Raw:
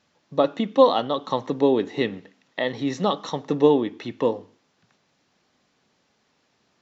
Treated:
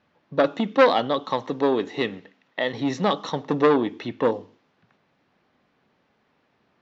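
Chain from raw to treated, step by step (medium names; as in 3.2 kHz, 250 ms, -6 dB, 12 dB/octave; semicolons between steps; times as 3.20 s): level-controlled noise filter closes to 2.5 kHz, open at -16.5 dBFS; 1.24–2.74 s: bass shelf 460 Hz -5 dB; transformer saturation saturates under 1.3 kHz; trim +2 dB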